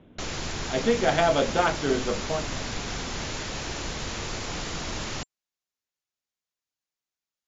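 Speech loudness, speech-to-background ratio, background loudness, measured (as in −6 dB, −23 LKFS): −25.5 LKFS, 7.0 dB, −32.5 LKFS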